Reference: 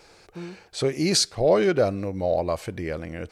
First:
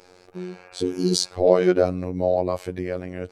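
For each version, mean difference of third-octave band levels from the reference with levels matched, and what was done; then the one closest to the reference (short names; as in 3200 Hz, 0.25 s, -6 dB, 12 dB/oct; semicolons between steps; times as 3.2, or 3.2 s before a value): 4.5 dB: spectral repair 0.53–1.27, 490–2800 Hz before; bell 370 Hz +7 dB 2.5 oct; robotiser 90.8 Hz; gain -1 dB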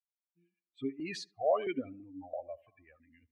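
14.5 dB: per-bin expansion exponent 3; in parallel at +2.5 dB: limiter -22.5 dBFS, peak gain reduction 10.5 dB; on the sum: darkening echo 73 ms, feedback 39%, low-pass 1600 Hz, level -20.5 dB; vowel sequencer 3 Hz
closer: first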